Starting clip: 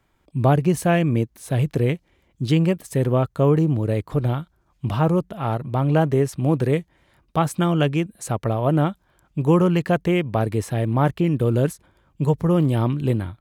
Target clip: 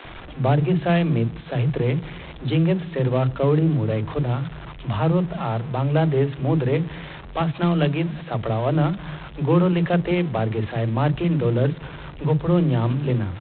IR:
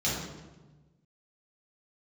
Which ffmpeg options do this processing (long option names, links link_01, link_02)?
-filter_complex "[0:a]aeval=exprs='val(0)+0.5*0.0282*sgn(val(0))':channel_layout=same,equalizer=frequency=90:width=1.8:gain=-2.5,acrossover=split=650|1500[link_01][link_02][link_03];[link_02]asoftclip=type=tanh:threshold=-26.5dB[link_04];[link_01][link_04][link_03]amix=inputs=3:normalize=0,acrossover=split=290[link_05][link_06];[link_05]adelay=40[link_07];[link_07][link_06]amix=inputs=2:normalize=0,asplit=2[link_08][link_09];[1:a]atrim=start_sample=2205[link_10];[link_09][link_10]afir=irnorm=-1:irlink=0,volume=-31.5dB[link_11];[link_08][link_11]amix=inputs=2:normalize=0" -ar 8000 -c:a adpcm_g726 -b:a 24k